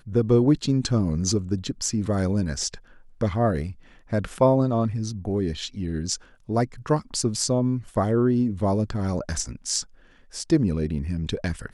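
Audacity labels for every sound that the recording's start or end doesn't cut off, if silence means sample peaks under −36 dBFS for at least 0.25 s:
3.210000	3.720000	sound
4.110000	6.160000	sound
6.490000	9.820000	sound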